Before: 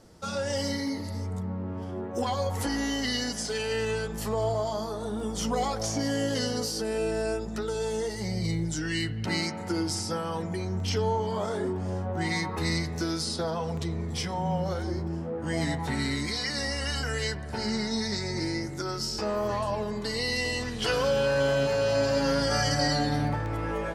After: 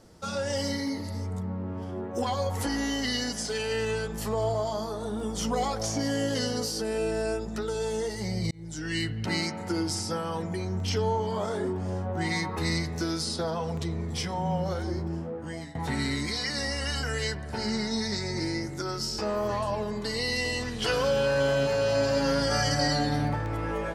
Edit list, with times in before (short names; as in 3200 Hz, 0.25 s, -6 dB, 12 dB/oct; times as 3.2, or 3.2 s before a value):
8.51–8.97 fade in linear
15.18–15.75 fade out, to -22 dB